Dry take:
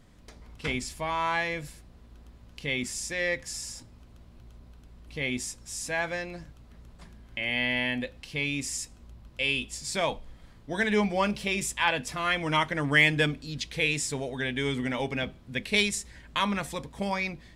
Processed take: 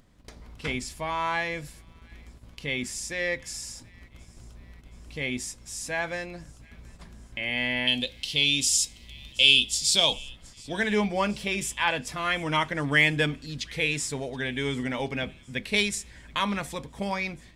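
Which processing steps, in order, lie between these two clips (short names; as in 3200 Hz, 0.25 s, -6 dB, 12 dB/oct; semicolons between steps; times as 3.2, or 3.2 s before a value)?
7.87–10.13 resonant high shelf 2500 Hz +9.5 dB, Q 3; gate -50 dBFS, range -29 dB; upward compressor, threshold -40 dBFS; thin delay 0.725 s, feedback 58%, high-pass 1900 Hz, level -24 dB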